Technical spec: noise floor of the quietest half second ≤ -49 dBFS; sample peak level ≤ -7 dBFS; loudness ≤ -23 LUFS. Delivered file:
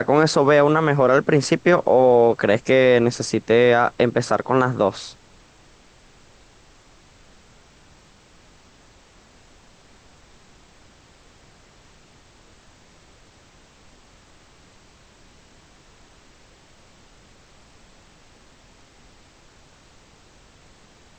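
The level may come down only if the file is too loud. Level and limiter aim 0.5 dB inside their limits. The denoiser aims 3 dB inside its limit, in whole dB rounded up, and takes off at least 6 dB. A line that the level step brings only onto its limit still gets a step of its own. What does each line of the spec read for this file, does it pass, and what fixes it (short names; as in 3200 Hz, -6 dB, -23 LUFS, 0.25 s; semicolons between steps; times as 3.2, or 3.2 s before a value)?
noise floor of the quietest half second -52 dBFS: OK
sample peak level -5.0 dBFS: fail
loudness -17.5 LUFS: fail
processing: gain -6 dB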